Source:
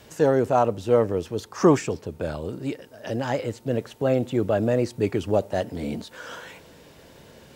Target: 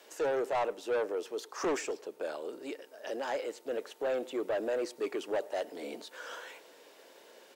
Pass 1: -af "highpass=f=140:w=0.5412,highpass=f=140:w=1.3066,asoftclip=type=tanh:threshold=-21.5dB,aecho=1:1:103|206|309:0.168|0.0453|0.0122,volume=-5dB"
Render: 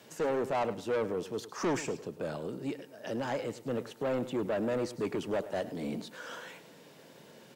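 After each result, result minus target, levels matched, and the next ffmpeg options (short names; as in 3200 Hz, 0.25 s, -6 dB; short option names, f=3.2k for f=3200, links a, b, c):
125 Hz band +17.0 dB; echo-to-direct +9.5 dB
-af "highpass=f=350:w=0.5412,highpass=f=350:w=1.3066,asoftclip=type=tanh:threshold=-21.5dB,aecho=1:1:103|206|309:0.168|0.0453|0.0122,volume=-5dB"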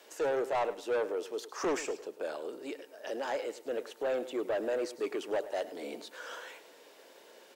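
echo-to-direct +9.5 dB
-af "highpass=f=350:w=0.5412,highpass=f=350:w=1.3066,asoftclip=type=tanh:threshold=-21.5dB,aecho=1:1:103|206:0.0562|0.0152,volume=-5dB"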